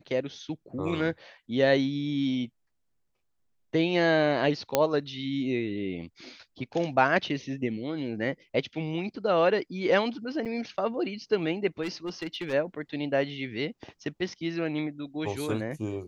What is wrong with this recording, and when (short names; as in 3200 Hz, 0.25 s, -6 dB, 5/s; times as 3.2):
4.75 pop -7 dBFS
10.45–10.46 gap 6.8 ms
11.82–12.54 clipped -28.5 dBFS